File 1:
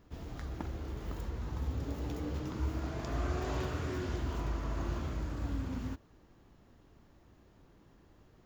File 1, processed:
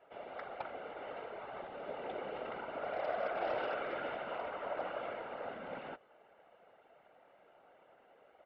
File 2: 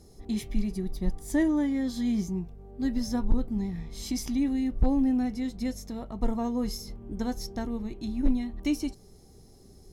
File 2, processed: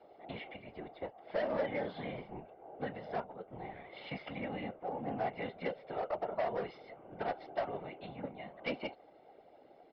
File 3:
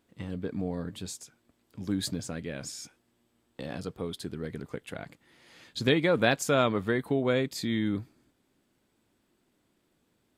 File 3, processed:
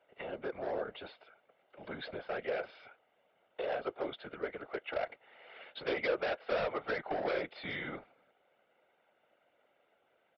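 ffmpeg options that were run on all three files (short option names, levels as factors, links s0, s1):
-af "equalizer=f=600:w=1.8:g=5,aecho=1:1:1.4:0.62,acompressor=threshold=0.0447:ratio=8,afreqshift=65,aeval=exprs='0.126*(cos(1*acos(clip(val(0)/0.126,-1,1)))-cos(1*PI/2))+0.00447*(cos(6*acos(clip(val(0)/0.126,-1,1)))-cos(6*PI/2))':c=same,highpass=f=490:t=q:w=0.5412,highpass=f=490:t=q:w=1.307,lowpass=f=3100:t=q:w=0.5176,lowpass=f=3100:t=q:w=0.7071,lowpass=f=3100:t=q:w=1.932,afreqshift=-95,aresample=11025,asoftclip=type=hard:threshold=0.0237,aresample=44100,afftfilt=real='hypot(re,im)*cos(2*PI*random(0))':imag='hypot(re,im)*sin(2*PI*random(1))':win_size=512:overlap=0.75,volume=2.66"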